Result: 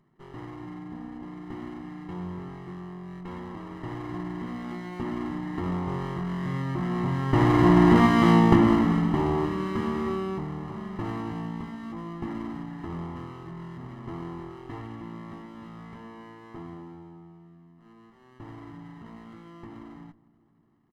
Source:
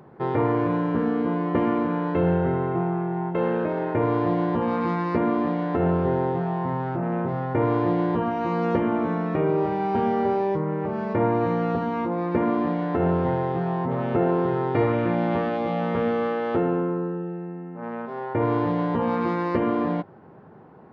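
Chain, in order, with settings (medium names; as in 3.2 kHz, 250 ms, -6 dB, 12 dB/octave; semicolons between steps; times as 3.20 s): comb filter that takes the minimum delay 0.6 ms; Doppler pass-by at 8.09 s, 10 m/s, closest 4 m; peaking EQ 350 Hz +5 dB 0.96 oct; comb 1 ms, depth 72%; filtered feedback delay 251 ms, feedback 70%, low-pass 1 kHz, level -20 dB; trim +6 dB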